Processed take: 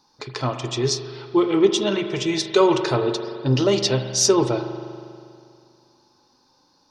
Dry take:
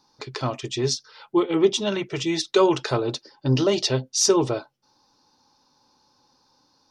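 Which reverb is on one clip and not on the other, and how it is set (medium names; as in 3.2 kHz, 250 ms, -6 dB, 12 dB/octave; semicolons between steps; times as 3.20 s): spring tank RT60 2.3 s, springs 40 ms, chirp 45 ms, DRR 7 dB; trim +1.5 dB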